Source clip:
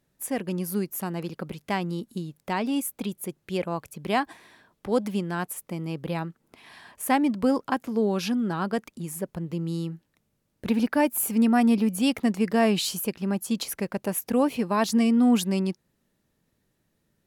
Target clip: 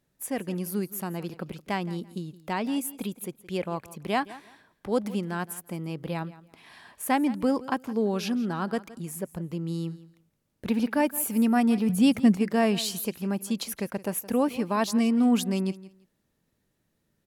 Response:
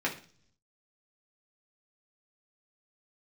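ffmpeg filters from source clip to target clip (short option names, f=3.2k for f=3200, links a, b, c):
-filter_complex "[0:a]asettb=1/sr,asplit=3[a][b][c];[a]atrim=end=11.894[d];[b]atrim=start=11.89:end=12.37,asetpts=PTS-STARTPTS,afade=t=in:d=0.004:c=qsin,afade=t=out:st=0.476:d=0.004:c=qsin,equalizer=f=140:t=o:w=1.7:g=12[e];[c]atrim=start=12.366[f];[d][e]acrossfade=d=0.004:c1=hsin:c2=qsin[g];[g][f]acrossfade=d=0.004:c1=qsin:c2=hsin,aecho=1:1:168|336:0.126|0.0277,volume=-2dB"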